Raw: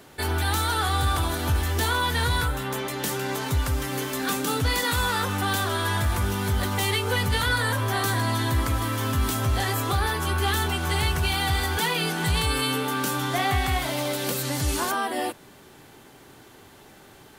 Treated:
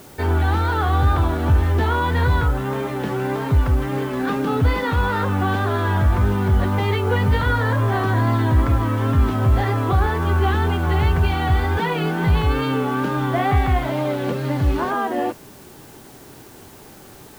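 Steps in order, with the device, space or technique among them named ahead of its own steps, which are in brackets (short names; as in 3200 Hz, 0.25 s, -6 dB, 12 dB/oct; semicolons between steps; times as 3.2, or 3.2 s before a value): cassette deck with a dirty head (tape spacing loss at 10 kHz 44 dB; wow and flutter; white noise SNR 29 dB); gain +8.5 dB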